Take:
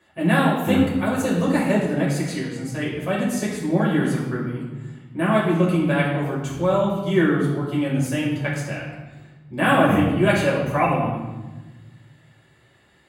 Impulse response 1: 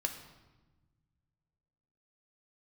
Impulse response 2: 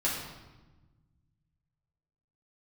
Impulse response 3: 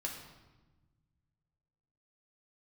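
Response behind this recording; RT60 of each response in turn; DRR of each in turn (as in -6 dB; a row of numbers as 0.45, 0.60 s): 2; 1.2, 1.2, 1.2 s; 4.5, -6.5, -0.5 dB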